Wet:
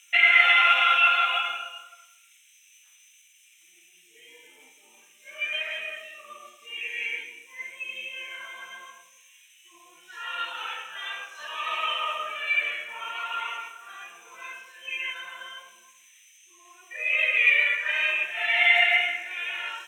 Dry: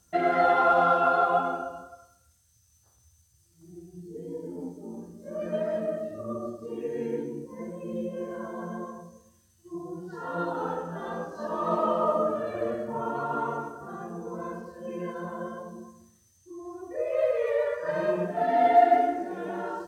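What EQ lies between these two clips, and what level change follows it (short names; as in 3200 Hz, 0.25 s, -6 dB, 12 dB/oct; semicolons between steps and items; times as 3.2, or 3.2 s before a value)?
resonant high-pass 2300 Hz, resonance Q 7.8; Butterworth band-stop 4600 Hz, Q 3.2; bell 2900 Hz +11.5 dB 0.67 oct; +6.5 dB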